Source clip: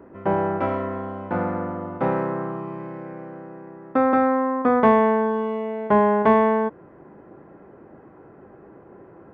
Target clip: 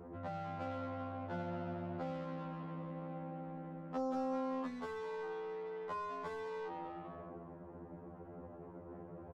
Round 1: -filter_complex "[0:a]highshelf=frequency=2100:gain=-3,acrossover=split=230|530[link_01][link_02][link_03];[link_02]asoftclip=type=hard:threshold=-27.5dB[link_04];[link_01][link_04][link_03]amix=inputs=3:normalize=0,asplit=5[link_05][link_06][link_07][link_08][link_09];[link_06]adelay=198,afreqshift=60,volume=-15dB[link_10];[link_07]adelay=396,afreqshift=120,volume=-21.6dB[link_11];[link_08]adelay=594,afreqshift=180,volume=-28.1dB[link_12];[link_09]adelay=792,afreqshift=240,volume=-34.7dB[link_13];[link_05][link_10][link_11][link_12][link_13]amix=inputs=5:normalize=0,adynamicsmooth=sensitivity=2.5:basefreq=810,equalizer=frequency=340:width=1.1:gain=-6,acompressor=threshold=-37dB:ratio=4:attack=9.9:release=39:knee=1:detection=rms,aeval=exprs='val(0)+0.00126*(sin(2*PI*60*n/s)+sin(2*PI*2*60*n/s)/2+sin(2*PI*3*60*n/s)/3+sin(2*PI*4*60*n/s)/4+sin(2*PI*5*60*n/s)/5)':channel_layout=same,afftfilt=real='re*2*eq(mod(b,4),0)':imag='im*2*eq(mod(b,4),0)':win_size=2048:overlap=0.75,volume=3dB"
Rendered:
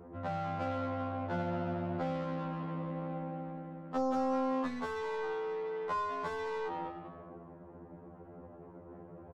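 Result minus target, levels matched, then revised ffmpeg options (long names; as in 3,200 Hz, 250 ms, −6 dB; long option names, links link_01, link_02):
hard clipping: distortion +18 dB; downward compressor: peak gain reduction −7.5 dB
-filter_complex "[0:a]highshelf=frequency=2100:gain=-3,acrossover=split=230|530[link_01][link_02][link_03];[link_02]asoftclip=type=hard:threshold=-18dB[link_04];[link_01][link_04][link_03]amix=inputs=3:normalize=0,asplit=5[link_05][link_06][link_07][link_08][link_09];[link_06]adelay=198,afreqshift=60,volume=-15dB[link_10];[link_07]adelay=396,afreqshift=120,volume=-21.6dB[link_11];[link_08]adelay=594,afreqshift=180,volume=-28.1dB[link_12];[link_09]adelay=792,afreqshift=240,volume=-34.7dB[link_13];[link_05][link_10][link_11][link_12][link_13]amix=inputs=5:normalize=0,adynamicsmooth=sensitivity=2.5:basefreq=810,equalizer=frequency=340:width=1.1:gain=-6,acompressor=threshold=-45.5dB:ratio=4:attack=9.9:release=39:knee=1:detection=rms,aeval=exprs='val(0)+0.00126*(sin(2*PI*60*n/s)+sin(2*PI*2*60*n/s)/2+sin(2*PI*3*60*n/s)/3+sin(2*PI*4*60*n/s)/4+sin(2*PI*5*60*n/s)/5)':channel_layout=same,afftfilt=real='re*2*eq(mod(b,4),0)':imag='im*2*eq(mod(b,4),0)':win_size=2048:overlap=0.75,volume=3dB"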